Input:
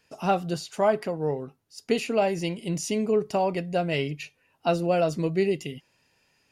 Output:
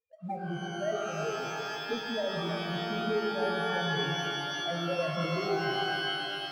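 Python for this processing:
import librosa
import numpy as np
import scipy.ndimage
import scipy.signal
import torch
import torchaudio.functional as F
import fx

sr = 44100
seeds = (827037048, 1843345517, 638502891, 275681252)

y = fx.env_flanger(x, sr, rest_ms=2.1, full_db=-19.5)
y = fx.spec_topn(y, sr, count=2)
y = fx.air_absorb(y, sr, metres=380.0)
y = y + 10.0 ** (-11.0 / 20.0) * np.pad(y, (int(327 * sr / 1000.0), 0))[:len(y)]
y = fx.leveller(y, sr, passes=1)
y = fx.rev_shimmer(y, sr, seeds[0], rt60_s=3.1, semitones=12, shimmer_db=-2, drr_db=1.5)
y = y * librosa.db_to_amplitude(-7.5)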